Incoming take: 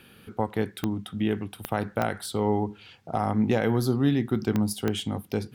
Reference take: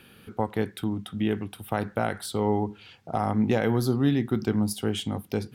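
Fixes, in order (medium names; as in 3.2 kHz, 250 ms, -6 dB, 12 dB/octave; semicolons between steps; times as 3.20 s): de-click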